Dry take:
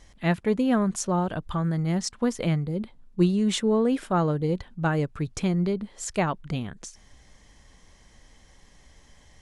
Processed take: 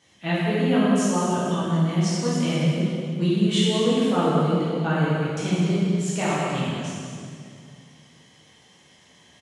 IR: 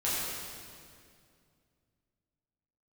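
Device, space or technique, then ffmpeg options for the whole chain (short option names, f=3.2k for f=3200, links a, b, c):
PA in a hall: -filter_complex "[0:a]highpass=f=120:w=0.5412,highpass=f=120:w=1.3066,equalizer=f=3k:t=o:w=0.57:g=8,aecho=1:1:186:0.355[a];[1:a]atrim=start_sample=2205[b];[a][b]afir=irnorm=-1:irlink=0,volume=-6.5dB"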